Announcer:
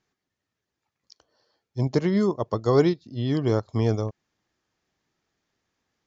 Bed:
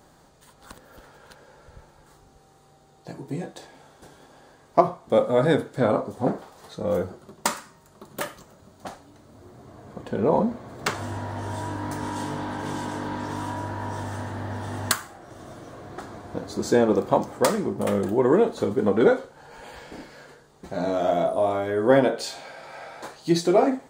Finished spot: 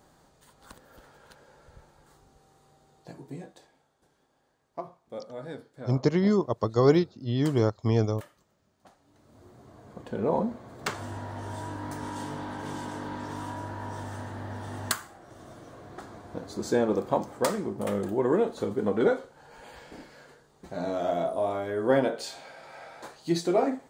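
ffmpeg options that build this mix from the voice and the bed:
-filter_complex "[0:a]adelay=4100,volume=-1dB[a];[1:a]volume=9dB,afade=t=out:st=2.9:d=0.96:silence=0.188365,afade=t=in:st=8.95:d=0.45:silence=0.199526[b];[a][b]amix=inputs=2:normalize=0"

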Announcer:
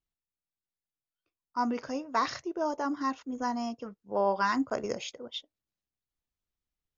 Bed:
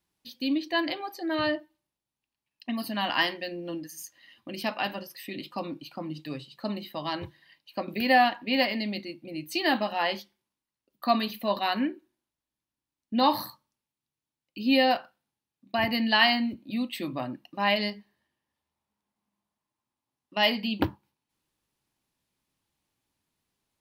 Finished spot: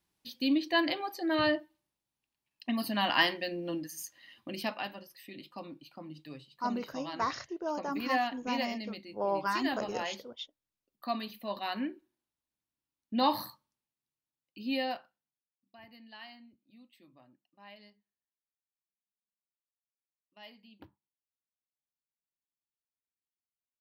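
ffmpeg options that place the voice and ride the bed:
-filter_complex "[0:a]adelay=5050,volume=-4dB[a];[1:a]volume=5dB,afade=t=out:st=4.42:d=0.48:silence=0.334965,afade=t=in:st=11.47:d=0.8:silence=0.530884,afade=t=out:st=13.63:d=2.12:silence=0.0668344[b];[a][b]amix=inputs=2:normalize=0"

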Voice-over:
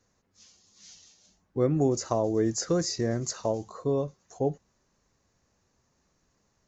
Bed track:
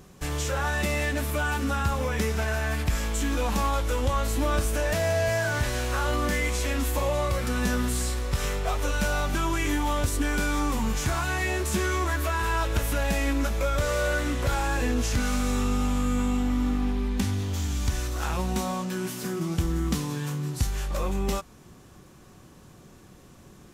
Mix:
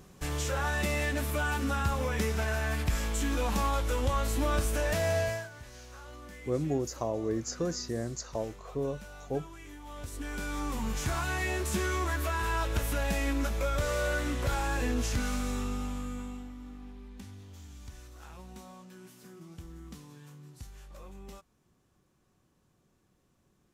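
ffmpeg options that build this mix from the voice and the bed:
-filter_complex "[0:a]adelay=4900,volume=-6dB[a];[1:a]volume=13.5dB,afade=t=out:st=5.18:d=0.31:silence=0.125893,afade=t=in:st=9.82:d=1.36:silence=0.141254,afade=t=out:st=15.05:d=1.49:silence=0.16788[b];[a][b]amix=inputs=2:normalize=0"

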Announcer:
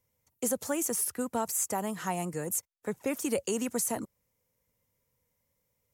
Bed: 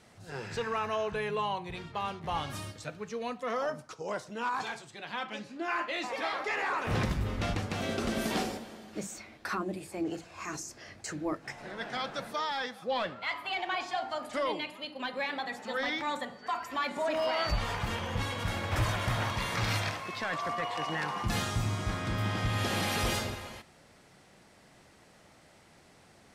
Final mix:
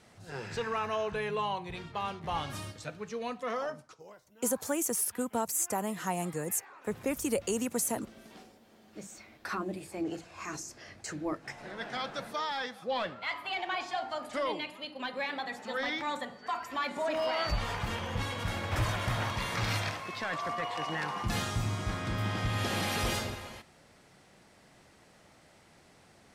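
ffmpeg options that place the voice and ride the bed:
-filter_complex "[0:a]adelay=4000,volume=-0.5dB[a];[1:a]volume=19.5dB,afade=t=out:st=3.46:d=0.7:silence=0.0944061,afade=t=in:st=8.56:d=1.07:silence=0.1[b];[a][b]amix=inputs=2:normalize=0"

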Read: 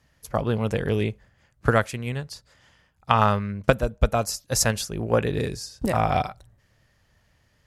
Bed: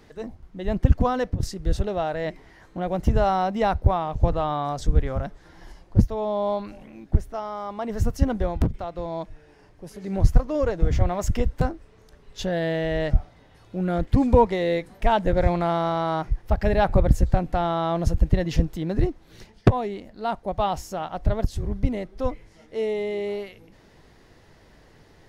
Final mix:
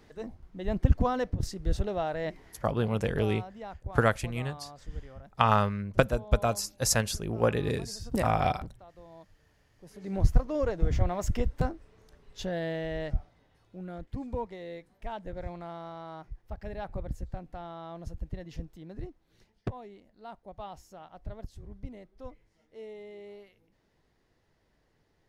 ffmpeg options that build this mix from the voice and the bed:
-filter_complex "[0:a]adelay=2300,volume=-4dB[a];[1:a]volume=9.5dB,afade=t=out:st=2.48:d=0.26:silence=0.177828,afade=t=in:st=9.69:d=0.41:silence=0.188365,afade=t=out:st=12.03:d=2.03:silence=0.237137[b];[a][b]amix=inputs=2:normalize=0"

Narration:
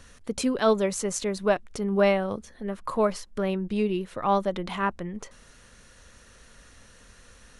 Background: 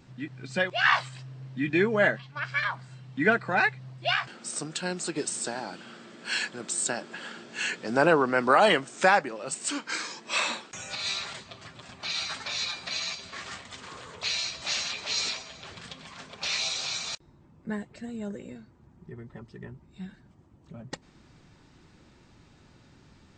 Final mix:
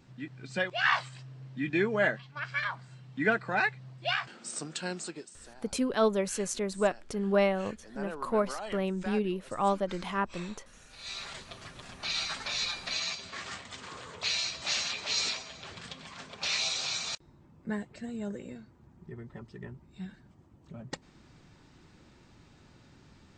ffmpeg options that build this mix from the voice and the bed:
-filter_complex "[0:a]adelay=5350,volume=-4dB[a];[1:a]volume=15dB,afade=t=out:st=4.96:d=0.31:silence=0.158489,afade=t=in:st=10.94:d=0.55:silence=0.112202[b];[a][b]amix=inputs=2:normalize=0"

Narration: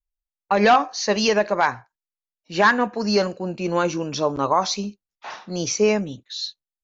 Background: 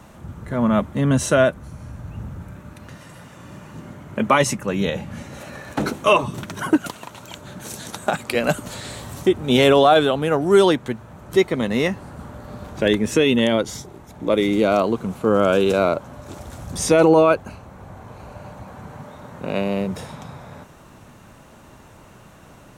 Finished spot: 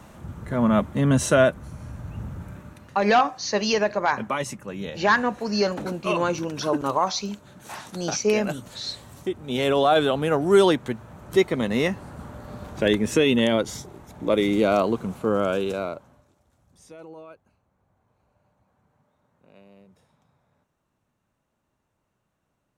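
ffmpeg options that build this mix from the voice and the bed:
-filter_complex "[0:a]adelay=2450,volume=-3dB[a];[1:a]volume=7dB,afade=t=out:st=2.56:d=0.4:silence=0.334965,afade=t=in:st=9.53:d=0.62:silence=0.375837,afade=t=out:st=14.92:d=1.4:silence=0.0446684[b];[a][b]amix=inputs=2:normalize=0"

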